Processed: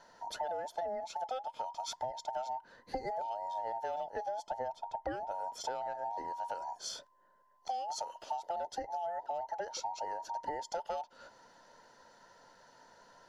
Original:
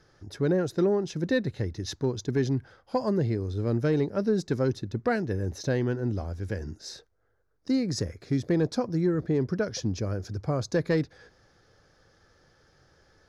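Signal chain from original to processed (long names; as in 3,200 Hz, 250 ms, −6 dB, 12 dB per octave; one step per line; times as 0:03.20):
frequency inversion band by band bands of 1,000 Hz
0:04.47–0:05.32: spectral tilt −2 dB per octave
downward compressor 6 to 1, threshold −37 dBFS, peak gain reduction 16.5 dB
level +1 dB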